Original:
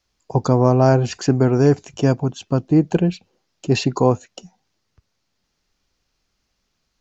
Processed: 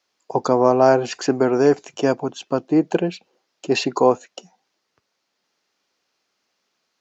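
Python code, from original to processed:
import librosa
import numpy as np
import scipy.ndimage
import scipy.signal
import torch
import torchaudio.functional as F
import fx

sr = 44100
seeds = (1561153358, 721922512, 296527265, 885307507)

y = scipy.signal.sosfilt(scipy.signal.butter(2, 350.0, 'highpass', fs=sr, output='sos'), x)
y = fx.high_shelf(y, sr, hz=4900.0, db=-5.5)
y = y * 10.0 ** (3.0 / 20.0)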